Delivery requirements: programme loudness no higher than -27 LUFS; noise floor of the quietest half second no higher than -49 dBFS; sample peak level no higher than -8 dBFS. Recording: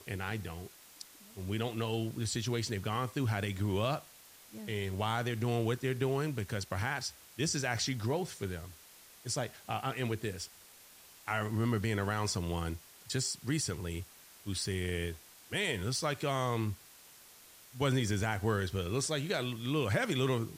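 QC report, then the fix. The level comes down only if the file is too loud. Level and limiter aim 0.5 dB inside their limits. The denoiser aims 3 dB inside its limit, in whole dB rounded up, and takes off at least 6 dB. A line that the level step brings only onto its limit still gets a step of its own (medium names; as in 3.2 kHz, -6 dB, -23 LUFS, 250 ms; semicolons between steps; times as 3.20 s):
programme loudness -34.5 LUFS: pass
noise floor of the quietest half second -57 dBFS: pass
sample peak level -18.5 dBFS: pass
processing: none needed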